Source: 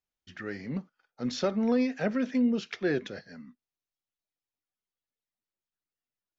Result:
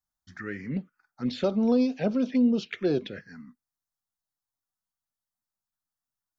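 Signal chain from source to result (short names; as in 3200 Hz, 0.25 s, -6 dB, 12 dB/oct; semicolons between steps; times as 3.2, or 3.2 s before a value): envelope phaser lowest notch 430 Hz, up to 1900 Hz, full sweep at -25 dBFS; gain +3.5 dB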